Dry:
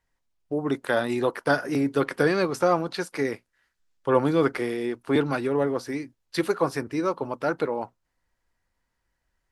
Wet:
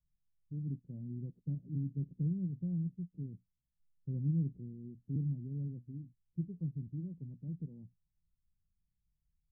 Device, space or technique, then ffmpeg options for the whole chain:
the neighbour's flat through the wall: -af "lowpass=f=170:w=0.5412,lowpass=f=170:w=1.3066,equalizer=f=170:t=o:w=0.44:g=6.5,volume=0.708"

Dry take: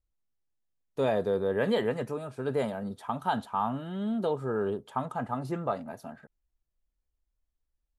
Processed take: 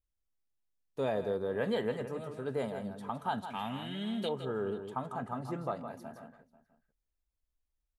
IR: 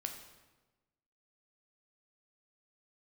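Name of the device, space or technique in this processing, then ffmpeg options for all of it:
ducked delay: -filter_complex "[0:a]asettb=1/sr,asplit=3[s0][s1][s2];[s0]atrim=end=3.504[s3];[s1]atrim=start=3.5:end=4.29,asetpts=PTS-STARTPTS,afade=t=in:d=0.004:c=qsin,afade=t=out:st=0.786:d=0.004:c=qsin,highshelf=f=1600:t=q:w=3:g=10.5[s4];[s2]atrim=start=4.286[s5];[s3][s4]acrossfade=d=0.004:c1=hsin:c2=qsin[s6];[s6][s5]acrossfade=d=0.004:c1=qsin:c2=hsin,asplit=3[s7][s8][s9];[s8]adelay=163,volume=0.596[s10];[s9]apad=whole_len=359188[s11];[s10][s11]sidechaincompress=threshold=0.0282:ratio=8:attack=31:release=718[s12];[s7][s12]amix=inputs=2:normalize=0,asplit=2[s13][s14];[s14]adelay=489.8,volume=0.112,highshelf=f=4000:g=-11[s15];[s13][s15]amix=inputs=2:normalize=0,volume=0.531"

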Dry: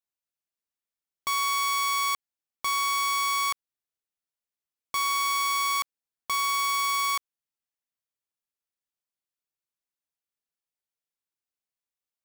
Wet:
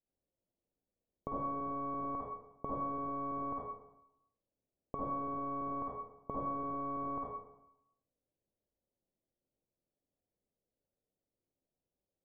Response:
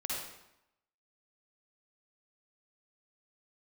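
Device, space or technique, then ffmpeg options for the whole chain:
next room: -filter_complex "[0:a]lowpass=f=570:w=0.5412,lowpass=f=570:w=1.3066[s0];[1:a]atrim=start_sample=2205[s1];[s0][s1]afir=irnorm=-1:irlink=0,volume=4.22"

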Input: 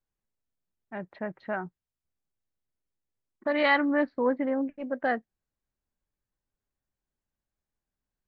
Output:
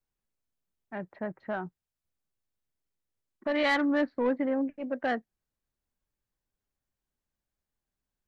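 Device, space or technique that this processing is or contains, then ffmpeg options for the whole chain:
one-band saturation: -filter_complex "[0:a]asettb=1/sr,asplit=3[s0][s1][s2];[s0]atrim=end=1.124[s3];[s1]atrim=start=1.12:end=1.63,asetpts=PTS-STARTPTS,afade=t=in:d=0.004:c=qsin,afade=t=out:st=0.506:d=0.004:c=qsin,equalizer=f=3600:w=1.4:g=-12.5[s4];[s2]atrim=start=1.626[s5];[s3][s4]acrossfade=d=0.004:c1=hsin:c2=qsin[s6];[s6][s5]acrossfade=d=0.004:c1=qsin:c2=hsin,acrossover=split=380|2400[s7][s8][s9];[s8]asoftclip=type=tanh:threshold=0.0562[s10];[s7][s10][s9]amix=inputs=3:normalize=0"

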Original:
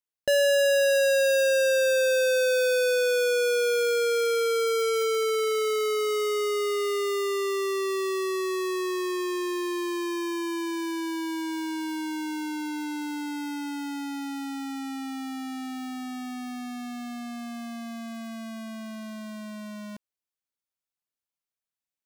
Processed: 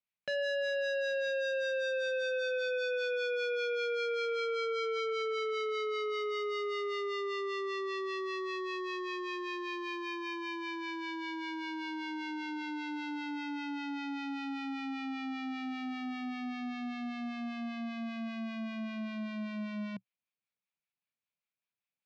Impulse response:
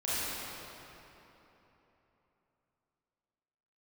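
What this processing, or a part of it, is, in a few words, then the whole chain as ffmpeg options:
guitar amplifier with harmonic tremolo: -filter_complex "[0:a]acrossover=split=860[s0][s1];[s0]aeval=exprs='val(0)*(1-0.5/2+0.5/2*cos(2*PI*5.1*n/s))':c=same[s2];[s1]aeval=exprs='val(0)*(1-0.5/2-0.5/2*cos(2*PI*5.1*n/s))':c=same[s3];[s2][s3]amix=inputs=2:normalize=0,asoftclip=type=tanh:threshold=0.0266,highpass=110,equalizer=f=120:t=q:w=4:g=7,equalizer=f=190:t=q:w=4:g=7,equalizer=f=340:t=q:w=4:g=-7,equalizer=f=2400:t=q:w=4:g=9,lowpass=f=4300:w=0.5412,lowpass=f=4300:w=1.3066"

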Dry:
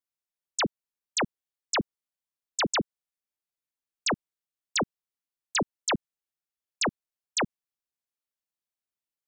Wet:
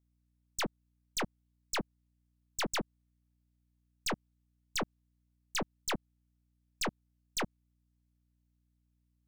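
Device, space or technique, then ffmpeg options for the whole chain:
valve amplifier with mains hum: -af "aeval=exprs='(tanh(35.5*val(0)+0.55)-tanh(0.55))/35.5':c=same,aeval=exprs='val(0)+0.0002*(sin(2*PI*60*n/s)+sin(2*PI*2*60*n/s)/2+sin(2*PI*3*60*n/s)/3+sin(2*PI*4*60*n/s)/4+sin(2*PI*5*60*n/s)/5)':c=same"

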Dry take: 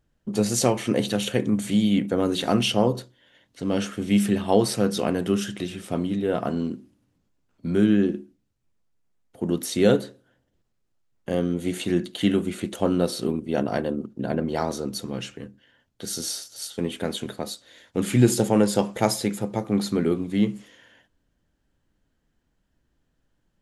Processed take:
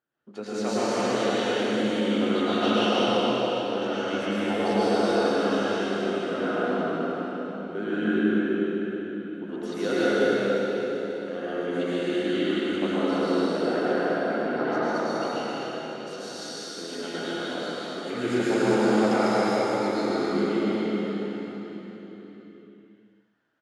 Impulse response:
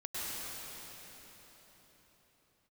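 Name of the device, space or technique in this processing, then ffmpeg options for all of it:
station announcement: -filter_complex "[0:a]highpass=310,lowpass=4000,equalizer=f=1400:t=o:w=0.44:g=8.5,aecho=1:1:148.7|204.1|274.1:0.708|0.631|0.355[s0];[1:a]atrim=start_sample=2205[s1];[s0][s1]afir=irnorm=-1:irlink=0,volume=0.562"

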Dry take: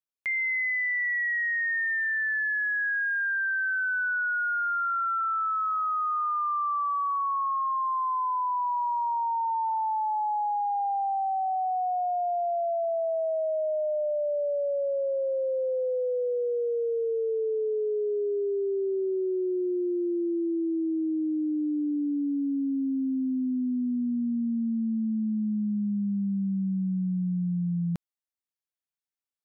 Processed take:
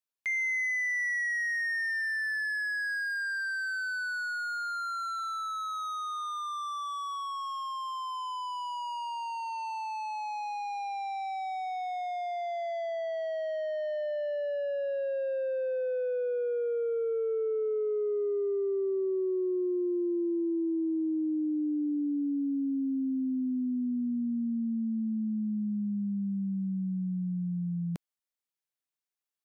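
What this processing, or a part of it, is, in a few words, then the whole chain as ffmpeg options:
one-band saturation: -filter_complex "[0:a]acrossover=split=520|2000[s0][s1][s2];[s1]asoftclip=type=tanh:threshold=0.0126[s3];[s0][s3][s2]amix=inputs=3:normalize=0,lowshelf=f=150:g=-10.5"

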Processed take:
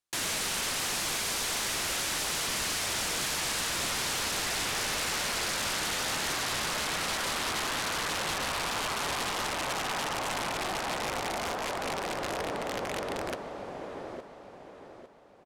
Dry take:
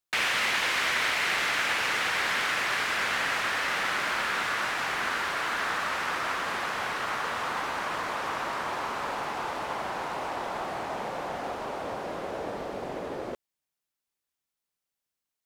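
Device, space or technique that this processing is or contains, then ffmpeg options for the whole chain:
overflowing digital effects unit: -af "aecho=1:1:854|1708|2562|3416:0.531|0.196|0.0727|0.0269,aeval=exprs='(mod(18.8*val(0)+1,2)-1)/18.8':c=same,lowpass=11000"

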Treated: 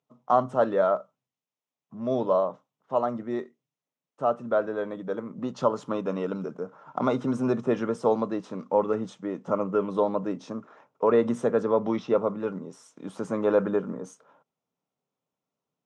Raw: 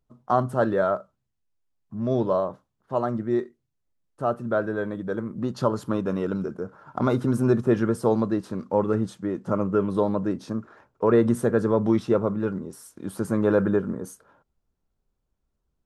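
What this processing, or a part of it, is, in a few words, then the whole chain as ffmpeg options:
television speaker: -filter_complex "[0:a]highpass=f=170:w=0.5412,highpass=f=170:w=1.3066,equalizer=f=210:t=q:w=4:g=-8,equalizer=f=350:t=q:w=4:g=-9,equalizer=f=1600:t=q:w=4:g=-8,equalizer=f=4500:t=q:w=4:g=-9,lowpass=f=6600:w=0.5412,lowpass=f=6600:w=1.3066,asettb=1/sr,asplit=3[s0][s1][s2];[s0]atrim=end=11.634[s3];[s1]atrim=start=11.63:end=12.17,asetpts=PTS-STARTPTS,afade=t=in:d=0.004:c=qsin,afade=t=out:st=0.536:d=0.004:c=qsin,lowpass=f=6000:w=0.5412,lowpass=f=6000:w=1.3066[s4];[s2]atrim=start=12.166[s5];[s3][s4]acrossfade=d=0.004:c1=hsin:c2=qsin[s6];[s6][s5]acrossfade=d=0.004:c1=qsin:c2=hsin,volume=1.19"

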